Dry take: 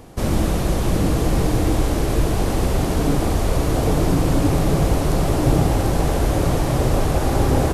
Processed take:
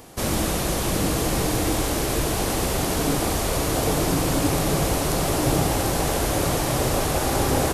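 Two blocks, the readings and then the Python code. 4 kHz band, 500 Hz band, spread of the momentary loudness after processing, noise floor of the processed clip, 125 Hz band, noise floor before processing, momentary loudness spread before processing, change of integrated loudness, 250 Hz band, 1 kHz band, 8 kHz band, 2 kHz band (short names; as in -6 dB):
+4.0 dB, -2.0 dB, 2 LU, -25 dBFS, -6.5 dB, -21 dBFS, 3 LU, -2.5 dB, -4.0 dB, -0.5 dB, +6.0 dB, +2.0 dB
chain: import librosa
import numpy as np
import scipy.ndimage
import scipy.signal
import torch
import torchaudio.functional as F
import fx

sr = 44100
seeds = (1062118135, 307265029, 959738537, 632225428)

y = fx.tilt_eq(x, sr, slope=2.0)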